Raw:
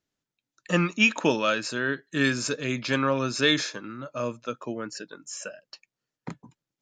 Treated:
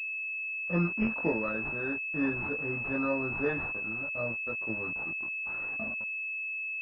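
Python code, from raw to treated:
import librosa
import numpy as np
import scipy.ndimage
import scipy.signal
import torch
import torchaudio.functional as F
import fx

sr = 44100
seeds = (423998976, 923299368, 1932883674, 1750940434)

y = fx.tape_stop_end(x, sr, length_s=2.26)
y = fx.low_shelf(y, sr, hz=72.0, db=6.5)
y = fx.quant_dither(y, sr, seeds[0], bits=6, dither='none')
y = fx.doubler(y, sr, ms=18.0, db=-2.0)
y = fx.pwm(y, sr, carrier_hz=2600.0)
y = F.gain(torch.from_numpy(y), -8.5).numpy()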